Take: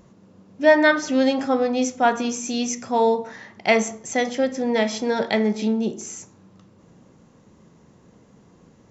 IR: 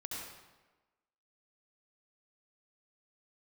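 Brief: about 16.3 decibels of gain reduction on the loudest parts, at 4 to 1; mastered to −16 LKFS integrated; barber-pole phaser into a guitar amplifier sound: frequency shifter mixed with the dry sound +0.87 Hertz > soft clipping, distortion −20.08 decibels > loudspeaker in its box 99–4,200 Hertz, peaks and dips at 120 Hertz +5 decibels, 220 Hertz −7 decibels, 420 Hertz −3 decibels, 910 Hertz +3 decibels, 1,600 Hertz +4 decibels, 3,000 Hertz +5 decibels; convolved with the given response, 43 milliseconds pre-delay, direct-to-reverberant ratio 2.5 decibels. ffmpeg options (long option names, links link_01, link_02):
-filter_complex "[0:a]acompressor=threshold=-30dB:ratio=4,asplit=2[link_01][link_02];[1:a]atrim=start_sample=2205,adelay=43[link_03];[link_02][link_03]afir=irnorm=-1:irlink=0,volume=-2.5dB[link_04];[link_01][link_04]amix=inputs=2:normalize=0,asplit=2[link_05][link_06];[link_06]afreqshift=0.87[link_07];[link_05][link_07]amix=inputs=2:normalize=1,asoftclip=threshold=-24.5dB,highpass=99,equalizer=frequency=120:width_type=q:width=4:gain=5,equalizer=frequency=220:width_type=q:width=4:gain=-7,equalizer=frequency=420:width_type=q:width=4:gain=-3,equalizer=frequency=910:width_type=q:width=4:gain=3,equalizer=frequency=1600:width_type=q:width=4:gain=4,equalizer=frequency=3000:width_type=q:width=4:gain=5,lowpass=frequency=4200:width=0.5412,lowpass=frequency=4200:width=1.3066,volume=20dB"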